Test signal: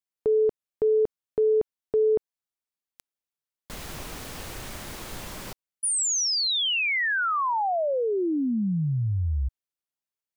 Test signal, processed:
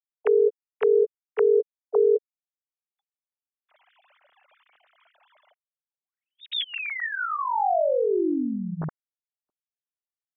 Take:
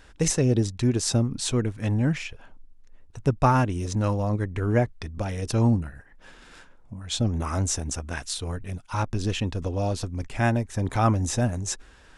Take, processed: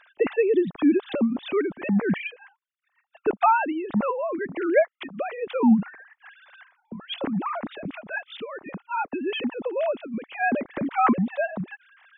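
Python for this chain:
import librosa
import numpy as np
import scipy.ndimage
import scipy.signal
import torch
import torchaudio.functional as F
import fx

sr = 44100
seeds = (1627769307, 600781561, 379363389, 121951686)

y = fx.sine_speech(x, sr)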